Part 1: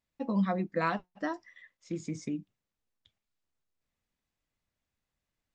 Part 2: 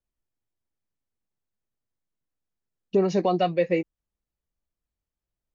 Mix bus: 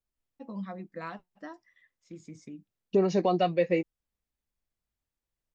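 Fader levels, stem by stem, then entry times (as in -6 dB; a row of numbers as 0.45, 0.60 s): -9.5, -2.5 dB; 0.20, 0.00 s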